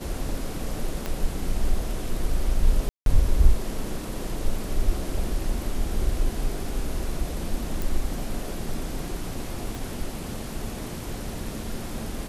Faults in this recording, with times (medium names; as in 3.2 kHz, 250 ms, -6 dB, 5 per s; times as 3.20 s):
1.06 s: pop -15 dBFS
2.89–3.06 s: dropout 172 ms
7.82 s: pop
9.75 s: pop